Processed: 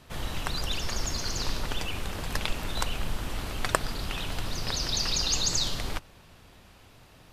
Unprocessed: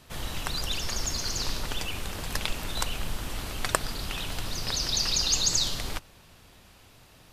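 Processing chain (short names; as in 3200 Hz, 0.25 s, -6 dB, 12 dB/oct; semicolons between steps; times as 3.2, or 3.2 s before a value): high shelf 3800 Hz -6 dB; gain +1.5 dB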